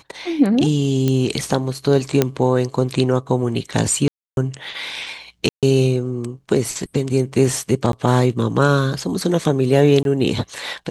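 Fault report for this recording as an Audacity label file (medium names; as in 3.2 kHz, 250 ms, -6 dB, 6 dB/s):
1.080000	1.080000	pop -7 dBFS
2.220000	2.220000	pop -1 dBFS
4.080000	4.370000	dropout 291 ms
5.490000	5.630000	dropout 137 ms
7.920000	7.930000	dropout 12 ms
10.030000	10.050000	dropout 22 ms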